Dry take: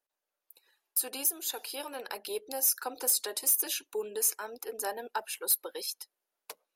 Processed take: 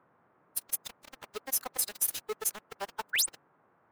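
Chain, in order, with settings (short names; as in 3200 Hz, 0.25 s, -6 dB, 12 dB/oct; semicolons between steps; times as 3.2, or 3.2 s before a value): low-pass opened by the level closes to 490 Hz, open at -27 dBFS; sample gate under -31 dBFS; band noise 110–1400 Hz -66 dBFS; painted sound rise, 5.4–5.62, 1400–10000 Hz -25 dBFS; time stretch by phase-locked vocoder 0.58×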